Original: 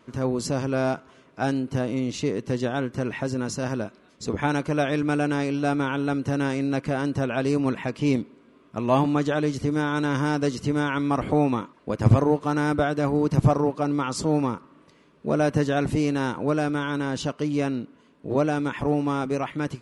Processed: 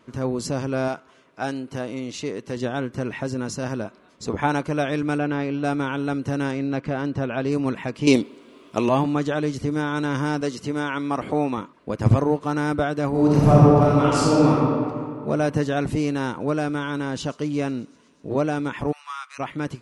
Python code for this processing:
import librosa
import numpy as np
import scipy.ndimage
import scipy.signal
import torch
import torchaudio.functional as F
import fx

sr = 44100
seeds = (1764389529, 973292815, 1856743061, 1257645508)

y = fx.low_shelf(x, sr, hz=280.0, db=-8.5, at=(0.88, 2.57))
y = fx.peak_eq(y, sr, hz=880.0, db=5.0, octaves=1.2, at=(3.84, 4.63))
y = fx.lowpass(y, sr, hz=3300.0, slope=12, at=(5.18, 5.64))
y = fx.air_absorb(y, sr, metres=100.0, at=(6.51, 7.52))
y = fx.curve_eq(y, sr, hz=(160.0, 350.0, 920.0, 1600.0, 3100.0), db=(0, 9, 8, 5, 14), at=(8.07, 8.89))
y = fx.highpass(y, sr, hz=220.0, slope=6, at=(10.41, 11.58))
y = fx.reverb_throw(y, sr, start_s=13.09, length_s=1.43, rt60_s=2.2, drr_db=-6.5)
y = fx.echo_wet_highpass(y, sr, ms=123, feedback_pct=76, hz=5200.0, wet_db=-17, at=(16.28, 18.29))
y = fx.ellip_highpass(y, sr, hz=1100.0, order=4, stop_db=70, at=(18.91, 19.38), fade=0.02)